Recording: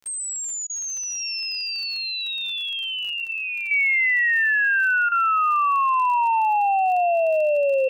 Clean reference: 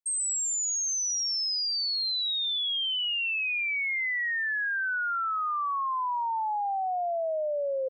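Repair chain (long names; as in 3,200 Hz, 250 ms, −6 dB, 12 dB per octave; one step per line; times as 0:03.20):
click removal
notch filter 2,700 Hz, Q 30
repair the gap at 0:00.67/0:05.09, 26 ms
level 0 dB, from 0:03.71 −9.5 dB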